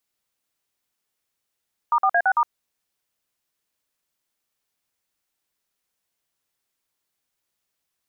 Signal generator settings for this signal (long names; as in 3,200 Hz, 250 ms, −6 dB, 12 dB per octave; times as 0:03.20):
touch tones "*4A6*", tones 63 ms, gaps 49 ms, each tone −18 dBFS